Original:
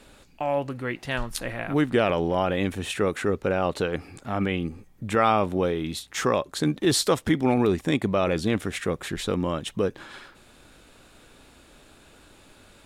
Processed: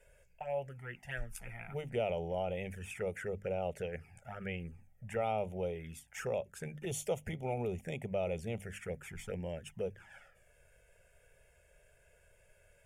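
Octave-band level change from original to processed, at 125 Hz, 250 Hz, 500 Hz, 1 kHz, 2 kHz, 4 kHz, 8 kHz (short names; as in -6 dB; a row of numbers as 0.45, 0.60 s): -12.0, -19.5, -11.5, -15.0, -14.0, -20.5, -14.0 dB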